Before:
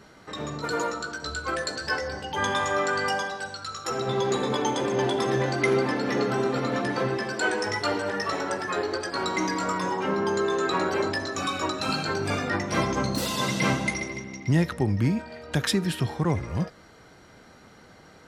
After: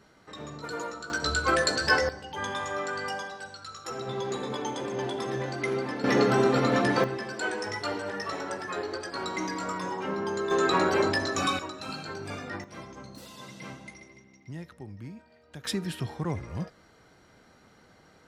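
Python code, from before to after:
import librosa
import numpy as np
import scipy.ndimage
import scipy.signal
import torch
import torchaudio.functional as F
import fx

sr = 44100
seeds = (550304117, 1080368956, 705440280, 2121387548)

y = fx.gain(x, sr, db=fx.steps((0.0, -7.5), (1.1, 5.0), (2.09, -7.0), (6.04, 3.0), (7.04, -5.5), (10.51, 1.5), (11.59, -10.0), (12.64, -18.5), (15.65, -6.5)))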